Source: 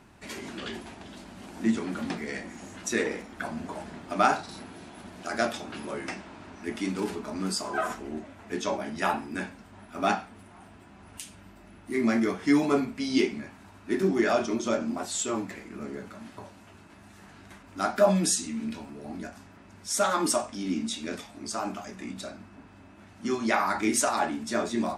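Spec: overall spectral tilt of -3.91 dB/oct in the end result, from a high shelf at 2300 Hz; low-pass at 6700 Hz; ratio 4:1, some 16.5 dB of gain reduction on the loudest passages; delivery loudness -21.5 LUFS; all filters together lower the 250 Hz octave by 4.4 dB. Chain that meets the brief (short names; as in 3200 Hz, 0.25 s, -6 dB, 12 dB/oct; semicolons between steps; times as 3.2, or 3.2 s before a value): LPF 6700 Hz; bell 250 Hz -5.5 dB; high shelf 2300 Hz -3.5 dB; compressor 4:1, threshold -38 dBFS; gain +20.5 dB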